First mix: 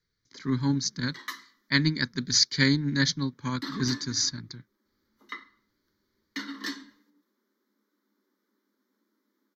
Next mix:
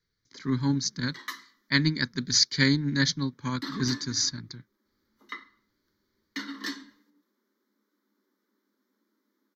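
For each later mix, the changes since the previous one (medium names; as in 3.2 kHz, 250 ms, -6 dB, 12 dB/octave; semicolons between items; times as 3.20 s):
no change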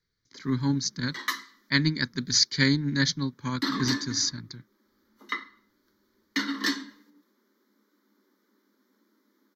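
background +7.5 dB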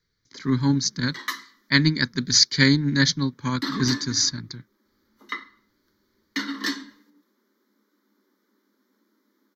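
speech +5.0 dB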